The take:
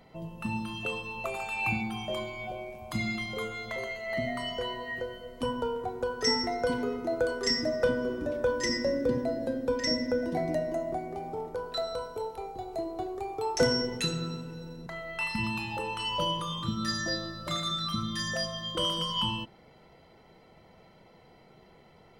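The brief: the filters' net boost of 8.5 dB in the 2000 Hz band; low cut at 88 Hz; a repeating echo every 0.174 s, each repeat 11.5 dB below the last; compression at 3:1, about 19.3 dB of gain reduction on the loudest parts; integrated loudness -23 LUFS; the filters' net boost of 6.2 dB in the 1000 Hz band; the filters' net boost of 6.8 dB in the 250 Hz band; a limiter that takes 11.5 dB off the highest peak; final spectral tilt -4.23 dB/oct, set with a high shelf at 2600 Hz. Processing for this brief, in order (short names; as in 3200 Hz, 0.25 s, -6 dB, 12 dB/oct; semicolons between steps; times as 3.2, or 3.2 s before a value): HPF 88 Hz; bell 250 Hz +7.5 dB; bell 1000 Hz +5 dB; bell 2000 Hz +7 dB; high shelf 2600 Hz +4.5 dB; compressor 3:1, threshold -44 dBFS; limiter -35.5 dBFS; feedback echo 0.174 s, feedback 27%, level -11.5 dB; gain +20.5 dB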